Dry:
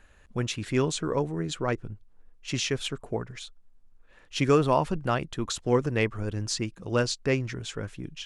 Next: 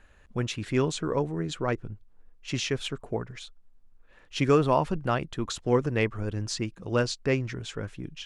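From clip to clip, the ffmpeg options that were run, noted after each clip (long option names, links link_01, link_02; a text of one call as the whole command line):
ffmpeg -i in.wav -af "highshelf=frequency=5800:gain=-6" out.wav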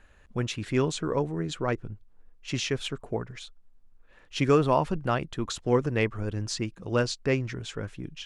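ffmpeg -i in.wav -af anull out.wav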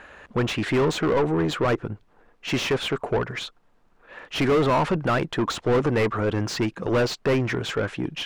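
ffmpeg -i in.wav -filter_complex "[0:a]asplit=2[link_01][link_02];[link_02]highpass=frequency=720:poles=1,volume=32dB,asoftclip=type=tanh:threshold=-8dB[link_03];[link_01][link_03]amix=inputs=2:normalize=0,lowpass=frequency=1300:poles=1,volume=-6dB,volume=-4dB" out.wav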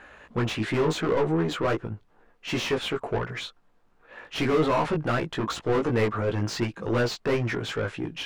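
ffmpeg -i in.wav -af "flanger=delay=17:depth=2.1:speed=2.7" out.wav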